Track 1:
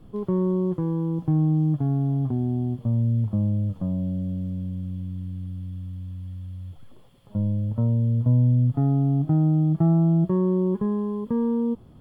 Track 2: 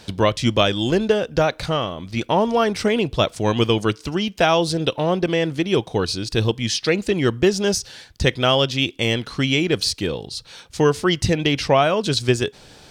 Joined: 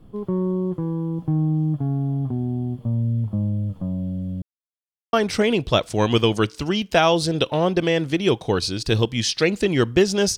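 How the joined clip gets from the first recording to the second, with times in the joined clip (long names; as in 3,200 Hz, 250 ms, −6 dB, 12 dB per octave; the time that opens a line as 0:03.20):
track 1
0:04.42–0:05.13: silence
0:05.13: continue with track 2 from 0:02.59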